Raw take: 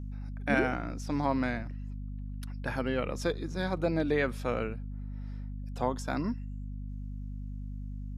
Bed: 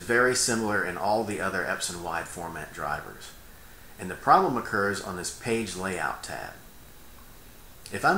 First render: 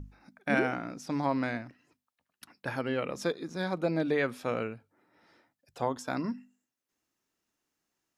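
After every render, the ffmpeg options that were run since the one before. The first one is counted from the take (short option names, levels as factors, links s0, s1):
-af "bandreject=f=50:t=h:w=6,bandreject=f=100:t=h:w=6,bandreject=f=150:t=h:w=6,bandreject=f=200:t=h:w=6,bandreject=f=250:t=h:w=6"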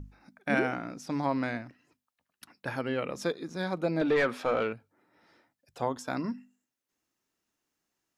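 -filter_complex "[0:a]asettb=1/sr,asplit=3[s0][s1][s2];[s0]atrim=end=4.014[s3];[s1]atrim=start=4.01:end=4.73,asetpts=PTS-STARTPTS,afade=t=in:d=0.004:c=qsin,afade=t=out:st=0.716:d=0.004:c=qsin,asplit=2[s4][s5];[s5]highpass=f=720:p=1,volume=7.94,asoftclip=type=tanh:threshold=0.158[s6];[s4][s6]amix=inputs=2:normalize=0,lowpass=f=1800:p=1,volume=0.501[s7];[s2]atrim=start=4.726[s8];[s3][s7]acrossfade=d=0.004:c1=hsin:c2=qsin[s9];[s9][s8]acrossfade=d=0.004:c1=qsin:c2=hsin"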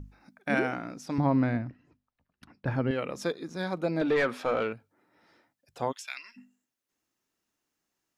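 -filter_complex "[0:a]asettb=1/sr,asplit=3[s0][s1][s2];[s0]atrim=end=1.184[s3];[s1]atrim=start=1.18:end=2.91,asetpts=PTS-STARTPTS,afade=t=in:d=0.004:c=qsin,afade=t=out:st=1.726:d=0.004:c=qsin,aemphasis=mode=reproduction:type=riaa[s4];[s2]atrim=start=2.906[s5];[s3][s4]acrossfade=d=0.004:c1=hsin:c2=qsin[s6];[s6][s5]acrossfade=d=0.004:c1=qsin:c2=hsin,asplit=3[s7][s8][s9];[s7]afade=t=out:st=5.91:d=0.02[s10];[s8]highpass=f=2500:t=q:w=4.2,afade=t=in:st=5.91:d=0.02,afade=t=out:st=6.36:d=0.02[s11];[s9]afade=t=in:st=6.36:d=0.02[s12];[s10][s11][s12]amix=inputs=3:normalize=0"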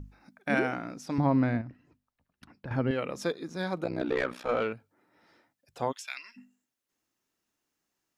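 -filter_complex "[0:a]asettb=1/sr,asplit=3[s0][s1][s2];[s0]atrim=end=1.614[s3];[s1]atrim=start=1.61:end=2.71,asetpts=PTS-STARTPTS,afade=t=in:d=0.004:c=qsin,afade=t=out:st=1.096:d=0.004:c=qsin,acompressor=threshold=0.0126:ratio=4:attack=3.2:release=140:knee=1:detection=peak[s4];[s2]atrim=start=2.706[s5];[s3][s4]acrossfade=d=0.004:c1=hsin:c2=qsin[s6];[s6][s5]acrossfade=d=0.004:c1=qsin:c2=hsin,asettb=1/sr,asplit=3[s7][s8][s9];[s7]atrim=end=3.844[s10];[s8]atrim=start=3.84:end=4.49,asetpts=PTS-STARTPTS,afade=t=in:d=0.004:c=qsin,afade=t=out:st=0.646:d=0.004:c=qsin,tremolo=f=63:d=0.974[s11];[s9]atrim=start=4.486[s12];[s10][s11]acrossfade=d=0.004:c1=hsin:c2=qsin[s13];[s13][s12]acrossfade=d=0.004:c1=qsin:c2=hsin"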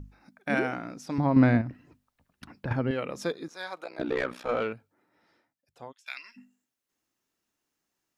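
-filter_complex "[0:a]asettb=1/sr,asplit=3[s0][s1][s2];[s0]atrim=end=1.364[s3];[s1]atrim=start=1.36:end=2.73,asetpts=PTS-STARTPTS,afade=t=in:d=0.004:c=qsin,afade=t=out:st=1.366:d=0.004:c=qsin,acontrast=74[s4];[s2]atrim=start=2.726[s5];[s3][s4]acrossfade=d=0.004:c1=hsin:c2=qsin[s6];[s6][s5]acrossfade=d=0.004:c1=qsin:c2=hsin,asettb=1/sr,asplit=3[s7][s8][s9];[s7]atrim=end=3.484[s10];[s8]atrim=start=3.48:end=3.99,asetpts=PTS-STARTPTS,afade=t=in:d=0.004:c=qsin,afade=t=out:st=0.506:d=0.004:c=qsin,highpass=760[s11];[s9]atrim=start=3.986[s12];[s10][s11]acrossfade=d=0.004:c1=hsin:c2=qsin[s13];[s13][s12]acrossfade=d=0.004:c1=qsin:c2=hsin,asplit=2[s14][s15];[s14]atrim=end=6.06,asetpts=PTS-STARTPTS,afade=t=out:st=4.7:d=1.36:silence=0.0794328[s16];[s15]atrim=start=6.06,asetpts=PTS-STARTPTS,afade=t=in:d=0.004:c=hsin:silence=0.0794328[s17];[s16][s17]concat=n=2:v=0:a=1"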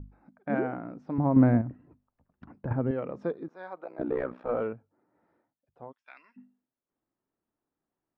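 -af "lowpass=1000"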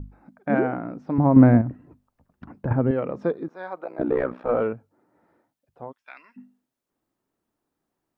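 -af "volume=2.24"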